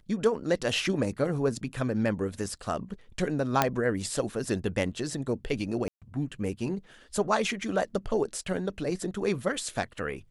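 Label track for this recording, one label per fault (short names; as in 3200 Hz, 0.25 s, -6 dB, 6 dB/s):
3.620000	3.620000	pop -6 dBFS
5.880000	6.020000	gap 0.137 s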